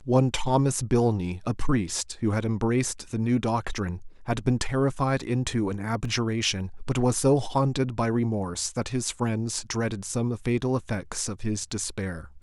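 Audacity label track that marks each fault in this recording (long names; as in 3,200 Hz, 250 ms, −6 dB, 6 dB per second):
6.050000	6.050000	drop-out 2.9 ms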